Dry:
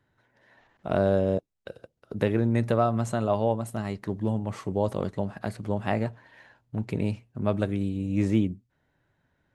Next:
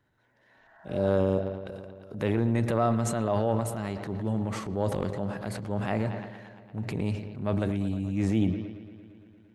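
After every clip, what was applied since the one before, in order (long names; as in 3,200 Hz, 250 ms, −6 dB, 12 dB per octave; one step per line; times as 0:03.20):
bucket-brigade delay 115 ms, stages 4,096, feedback 77%, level −18 dB
healed spectral selection 0:00.60–0:01.06, 610–2,000 Hz both
transient designer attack −5 dB, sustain +8 dB
level −1.5 dB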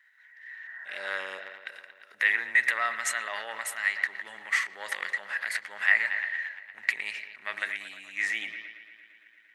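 high-pass with resonance 1,900 Hz, resonance Q 9.1
level +4.5 dB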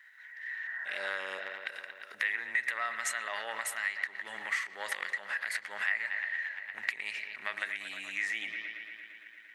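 downward compressor 2.5 to 1, threshold −41 dBFS, peak gain reduction 16.5 dB
level +5.5 dB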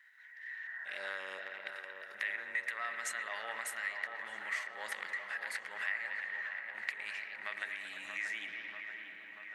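delay with a low-pass on its return 636 ms, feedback 68%, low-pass 2,300 Hz, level −6.5 dB
level −5.5 dB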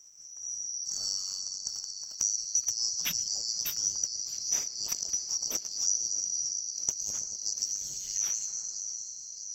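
neighbouring bands swapped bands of 4,000 Hz
level +8 dB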